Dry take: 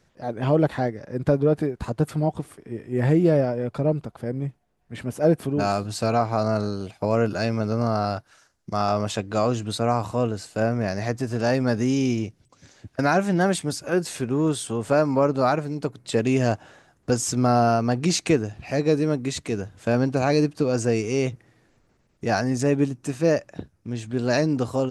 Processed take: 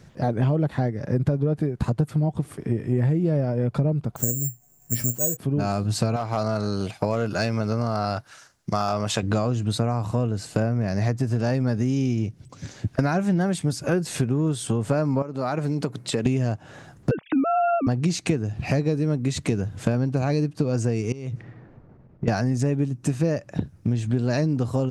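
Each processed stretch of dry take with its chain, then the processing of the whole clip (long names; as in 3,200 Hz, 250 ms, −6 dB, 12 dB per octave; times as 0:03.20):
0:04.16–0:05.37: tuned comb filter 120 Hz, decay 0.17 s, mix 70% + bad sample-rate conversion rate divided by 6×, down filtered, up zero stuff
0:06.16–0:09.23: low-shelf EQ 430 Hz −10.5 dB + hard clipping −17 dBFS
0:15.22–0:16.26: high-pass filter 250 Hz 6 dB per octave + downward compressor 2 to 1, threshold −37 dBFS
0:17.11–0:17.87: three sine waves on the formant tracks + parametric band 2,900 Hz +4 dB 2.4 octaves
0:21.12–0:22.28: low-pass that shuts in the quiet parts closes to 750 Hz, open at −20.5 dBFS + downward compressor 12 to 1, threshold −38 dBFS + one half of a high-frequency compander encoder only
whole clip: parametric band 130 Hz +10 dB 1.8 octaves; downward compressor 10 to 1, threshold −28 dBFS; level +8.5 dB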